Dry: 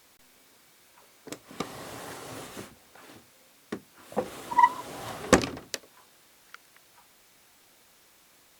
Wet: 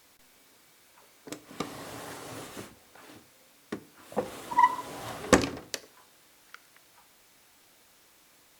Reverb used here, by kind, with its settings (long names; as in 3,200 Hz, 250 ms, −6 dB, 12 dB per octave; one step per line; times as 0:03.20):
feedback delay network reverb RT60 0.62 s, low-frequency decay 0.9×, high-frequency decay 0.7×, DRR 13.5 dB
level −1 dB